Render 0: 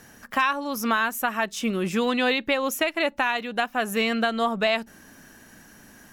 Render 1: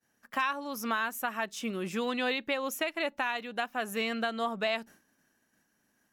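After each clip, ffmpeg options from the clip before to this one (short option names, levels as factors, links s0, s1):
-af "agate=range=0.0224:threshold=0.0112:ratio=3:detection=peak,lowshelf=f=91:g=-11,volume=0.422"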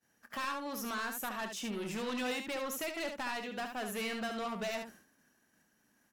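-af "asoftclip=type=tanh:threshold=0.0188,aecho=1:1:24|72:0.188|0.473"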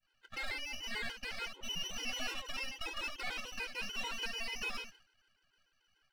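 -af "lowpass=f=2700:t=q:w=0.5098,lowpass=f=2700:t=q:w=0.6013,lowpass=f=2700:t=q:w=0.9,lowpass=f=2700:t=q:w=2.563,afreqshift=-3200,aeval=exprs='max(val(0),0)':c=same,afftfilt=real='re*gt(sin(2*PI*6.8*pts/sr)*(1-2*mod(floor(b*sr/1024/270),2)),0)':imag='im*gt(sin(2*PI*6.8*pts/sr)*(1-2*mod(floor(b*sr/1024/270),2)),0)':win_size=1024:overlap=0.75,volume=1.78"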